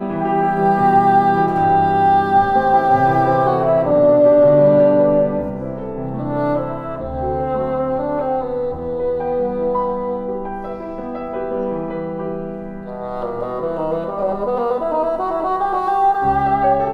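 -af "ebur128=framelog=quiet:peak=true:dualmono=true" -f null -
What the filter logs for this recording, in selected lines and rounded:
Integrated loudness:
  I:         -14.2 LUFS
  Threshold: -24.4 LUFS
Loudness range:
  LRA:        10.8 LU
  Threshold: -34.8 LUFS
  LRA low:   -21.3 LUFS
  LRA high:  -10.5 LUFS
True peak:
  Peak:       -2.7 dBFS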